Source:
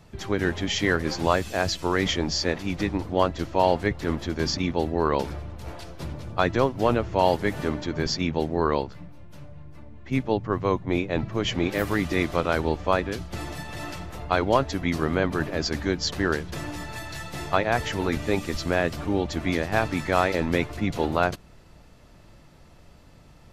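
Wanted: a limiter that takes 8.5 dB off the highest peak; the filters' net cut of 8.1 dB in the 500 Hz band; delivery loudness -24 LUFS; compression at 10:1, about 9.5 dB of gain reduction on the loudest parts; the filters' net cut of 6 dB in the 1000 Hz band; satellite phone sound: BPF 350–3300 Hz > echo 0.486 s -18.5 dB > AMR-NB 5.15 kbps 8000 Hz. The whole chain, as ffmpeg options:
-af "equalizer=f=500:t=o:g=-7.5,equalizer=f=1k:t=o:g=-5,acompressor=threshold=-30dB:ratio=10,alimiter=limit=-23.5dB:level=0:latency=1,highpass=350,lowpass=3.3k,aecho=1:1:486:0.119,volume=20dB" -ar 8000 -c:a libopencore_amrnb -b:a 5150

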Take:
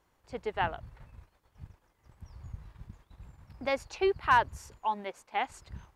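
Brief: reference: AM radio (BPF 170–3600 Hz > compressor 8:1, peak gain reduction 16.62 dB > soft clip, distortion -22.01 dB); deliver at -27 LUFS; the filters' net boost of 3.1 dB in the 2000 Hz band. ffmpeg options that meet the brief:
-af "highpass=170,lowpass=3.6k,equalizer=f=2k:t=o:g=4.5,acompressor=threshold=-34dB:ratio=8,asoftclip=threshold=-25dB,volume=14.5dB"

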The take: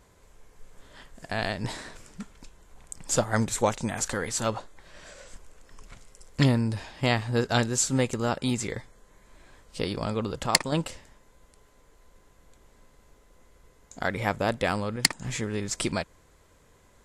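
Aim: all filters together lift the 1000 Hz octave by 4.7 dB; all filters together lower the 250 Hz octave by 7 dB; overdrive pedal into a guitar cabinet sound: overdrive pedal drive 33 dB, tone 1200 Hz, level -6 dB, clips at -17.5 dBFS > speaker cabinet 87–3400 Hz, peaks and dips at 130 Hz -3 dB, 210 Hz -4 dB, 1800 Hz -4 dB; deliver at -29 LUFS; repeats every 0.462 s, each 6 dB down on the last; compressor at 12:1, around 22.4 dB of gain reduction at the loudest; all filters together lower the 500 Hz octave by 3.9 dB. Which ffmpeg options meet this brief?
-filter_complex "[0:a]equalizer=f=250:t=o:g=-5,equalizer=f=500:t=o:g=-6.5,equalizer=f=1k:t=o:g=9,acompressor=threshold=-38dB:ratio=12,aecho=1:1:462|924|1386|1848|2310|2772:0.501|0.251|0.125|0.0626|0.0313|0.0157,asplit=2[a][b];[b]highpass=f=720:p=1,volume=33dB,asoftclip=type=tanh:threshold=-17.5dB[c];[a][c]amix=inputs=2:normalize=0,lowpass=f=1.2k:p=1,volume=-6dB,highpass=87,equalizer=f=130:t=q:w=4:g=-3,equalizer=f=210:t=q:w=4:g=-4,equalizer=f=1.8k:t=q:w=4:g=-4,lowpass=f=3.4k:w=0.5412,lowpass=f=3.4k:w=1.3066,volume=3.5dB"

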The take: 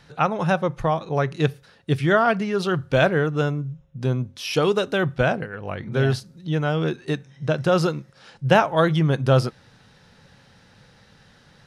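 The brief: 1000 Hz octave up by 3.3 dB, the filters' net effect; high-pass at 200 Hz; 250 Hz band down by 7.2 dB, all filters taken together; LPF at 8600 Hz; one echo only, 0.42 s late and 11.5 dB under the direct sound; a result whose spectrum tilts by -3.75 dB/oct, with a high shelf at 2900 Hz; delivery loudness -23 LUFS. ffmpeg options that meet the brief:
-af "highpass=200,lowpass=8.6k,equalizer=f=250:t=o:g=-8,equalizer=f=1k:t=o:g=6,highshelf=f=2.9k:g=-6,aecho=1:1:420:0.266,volume=0.5dB"

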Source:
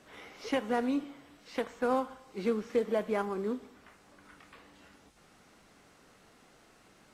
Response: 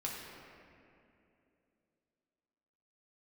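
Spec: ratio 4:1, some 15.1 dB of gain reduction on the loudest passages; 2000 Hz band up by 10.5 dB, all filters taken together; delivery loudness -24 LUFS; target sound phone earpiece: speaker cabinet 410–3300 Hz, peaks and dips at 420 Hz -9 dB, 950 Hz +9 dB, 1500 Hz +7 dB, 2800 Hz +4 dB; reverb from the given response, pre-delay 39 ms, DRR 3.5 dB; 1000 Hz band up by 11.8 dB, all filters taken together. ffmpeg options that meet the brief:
-filter_complex "[0:a]equalizer=f=1k:t=o:g=7.5,equalizer=f=2k:t=o:g=4.5,acompressor=threshold=-40dB:ratio=4,asplit=2[a][b];[1:a]atrim=start_sample=2205,adelay=39[c];[b][c]afir=irnorm=-1:irlink=0,volume=-5dB[d];[a][d]amix=inputs=2:normalize=0,highpass=410,equalizer=f=420:t=q:w=4:g=-9,equalizer=f=950:t=q:w=4:g=9,equalizer=f=1.5k:t=q:w=4:g=7,equalizer=f=2.8k:t=q:w=4:g=4,lowpass=f=3.3k:w=0.5412,lowpass=f=3.3k:w=1.3066,volume=19dB"

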